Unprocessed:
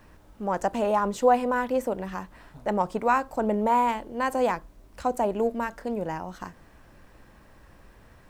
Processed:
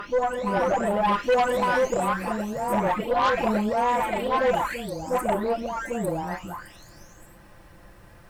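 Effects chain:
every frequency bin delayed by itself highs late, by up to 875 ms
backwards echo 1,159 ms −6 dB
harmonic generator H 5 −14 dB, 8 −20 dB, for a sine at −12.5 dBFS

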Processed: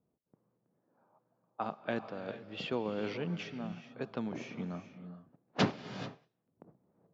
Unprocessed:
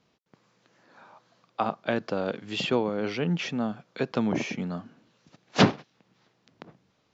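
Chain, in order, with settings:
low-pass that shuts in the quiet parts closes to 600 Hz, open at −22.5 dBFS
sample-and-hold tremolo
reverb whose tail is shaped and stops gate 460 ms rising, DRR 10.5 dB
level −7 dB

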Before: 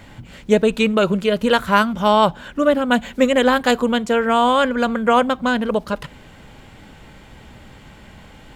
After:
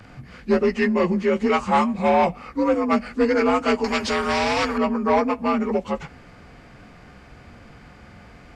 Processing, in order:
partials spread apart or drawn together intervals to 87%
soft clipping −11 dBFS, distortion −16 dB
0:03.84–0:04.78: every bin compressed towards the loudest bin 2 to 1

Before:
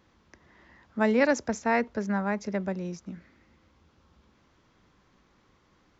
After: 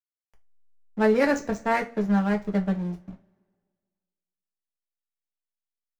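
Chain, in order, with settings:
slack as between gear wheels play −30.5 dBFS
coupled-rooms reverb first 0.22 s, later 1.7 s, from −28 dB, DRR 1.5 dB

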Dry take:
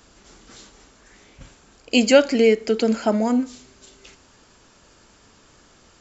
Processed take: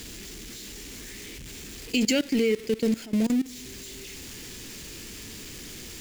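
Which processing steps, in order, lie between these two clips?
converter with a step at zero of −21 dBFS
flat-topped bell 900 Hz −13 dB
output level in coarse steps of 19 dB
level −3 dB

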